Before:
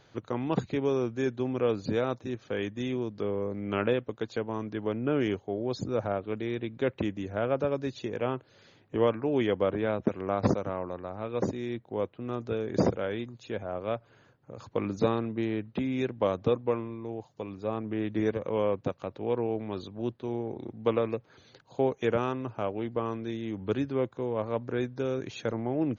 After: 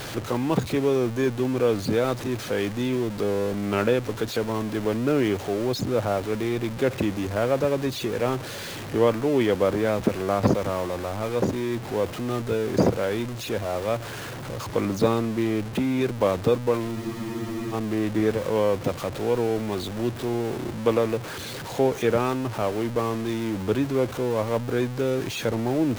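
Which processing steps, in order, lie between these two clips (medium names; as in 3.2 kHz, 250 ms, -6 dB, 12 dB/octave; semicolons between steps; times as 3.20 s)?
jump at every zero crossing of -33.5 dBFS; spectral freeze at 16.98 s, 0.75 s; trim +4 dB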